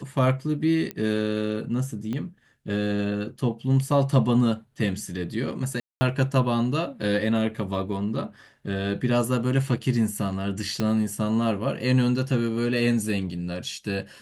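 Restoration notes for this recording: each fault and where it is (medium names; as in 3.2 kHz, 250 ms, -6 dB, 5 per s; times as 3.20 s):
0.91 s: pop -16 dBFS
2.13 s: pop -20 dBFS
5.80–6.01 s: dropout 210 ms
10.80 s: pop -13 dBFS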